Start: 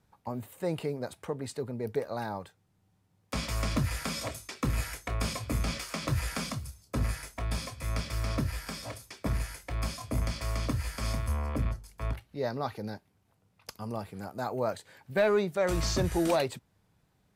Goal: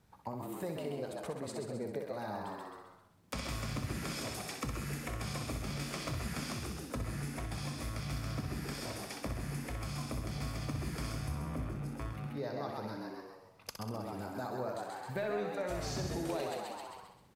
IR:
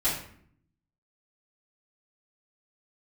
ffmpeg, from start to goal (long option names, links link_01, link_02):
-filter_complex "[0:a]asplit=2[link_01][link_02];[link_02]asplit=5[link_03][link_04][link_05][link_06][link_07];[link_03]adelay=133,afreqshift=88,volume=-5.5dB[link_08];[link_04]adelay=266,afreqshift=176,volume=-12.8dB[link_09];[link_05]adelay=399,afreqshift=264,volume=-20.2dB[link_10];[link_06]adelay=532,afreqshift=352,volume=-27.5dB[link_11];[link_07]adelay=665,afreqshift=440,volume=-34.8dB[link_12];[link_08][link_09][link_10][link_11][link_12]amix=inputs=5:normalize=0[link_13];[link_01][link_13]amix=inputs=2:normalize=0,acompressor=threshold=-42dB:ratio=3,asplit=2[link_14][link_15];[link_15]aecho=0:1:63|126|189|252|315|378|441:0.447|0.25|0.14|0.0784|0.0439|0.0246|0.0138[link_16];[link_14][link_16]amix=inputs=2:normalize=0,volume=2dB"